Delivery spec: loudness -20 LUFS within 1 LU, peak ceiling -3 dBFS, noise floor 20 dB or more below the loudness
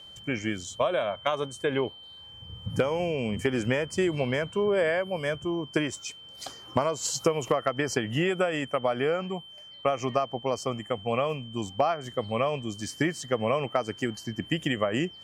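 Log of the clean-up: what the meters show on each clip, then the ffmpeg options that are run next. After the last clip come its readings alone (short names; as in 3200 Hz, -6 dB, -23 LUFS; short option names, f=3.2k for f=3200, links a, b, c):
steady tone 3100 Hz; tone level -45 dBFS; loudness -28.5 LUFS; peak -10.5 dBFS; loudness target -20.0 LUFS
-> -af "bandreject=f=3.1k:w=30"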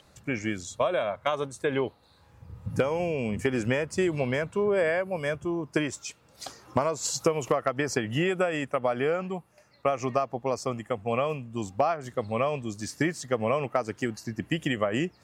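steady tone none; loudness -29.0 LUFS; peak -10.5 dBFS; loudness target -20.0 LUFS
-> -af "volume=9dB,alimiter=limit=-3dB:level=0:latency=1"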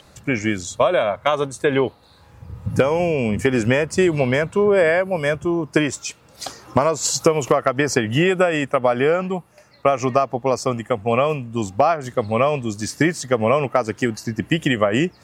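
loudness -20.0 LUFS; peak -3.0 dBFS; noise floor -51 dBFS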